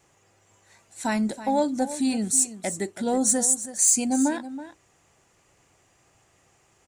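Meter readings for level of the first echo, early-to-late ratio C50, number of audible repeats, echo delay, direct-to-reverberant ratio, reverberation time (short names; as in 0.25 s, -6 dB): -13.5 dB, none, 1, 0.326 s, none, none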